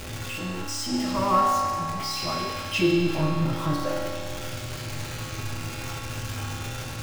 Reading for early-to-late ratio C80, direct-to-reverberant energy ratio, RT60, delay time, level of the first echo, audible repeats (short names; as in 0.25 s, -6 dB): 1.5 dB, -3.0 dB, 2.2 s, none, none, none